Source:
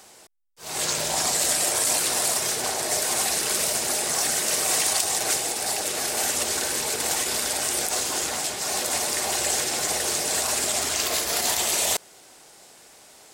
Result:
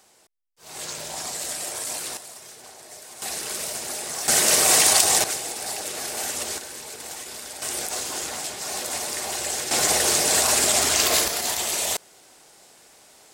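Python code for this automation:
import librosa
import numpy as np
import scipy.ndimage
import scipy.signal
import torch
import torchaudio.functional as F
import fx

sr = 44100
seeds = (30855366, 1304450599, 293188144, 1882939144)

y = fx.gain(x, sr, db=fx.steps((0.0, -8.0), (2.17, -18.0), (3.22, -6.0), (4.28, 6.0), (5.24, -4.0), (6.58, -11.0), (7.62, -3.5), (9.71, 5.0), (11.28, -2.0)))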